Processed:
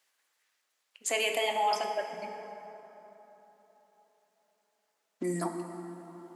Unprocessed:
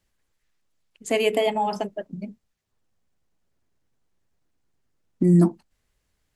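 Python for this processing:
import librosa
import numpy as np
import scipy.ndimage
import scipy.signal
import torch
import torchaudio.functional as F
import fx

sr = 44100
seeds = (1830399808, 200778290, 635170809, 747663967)

p1 = scipy.signal.sosfilt(scipy.signal.butter(2, 760.0, 'highpass', fs=sr, output='sos'), x)
p2 = fx.over_compress(p1, sr, threshold_db=-35.0, ratio=-1.0)
p3 = p1 + F.gain(torch.from_numpy(p2), -1.0).numpy()
p4 = fx.rev_plate(p3, sr, seeds[0], rt60_s=3.8, hf_ratio=0.5, predelay_ms=0, drr_db=4.5)
y = F.gain(torch.from_numpy(p4), -4.0).numpy()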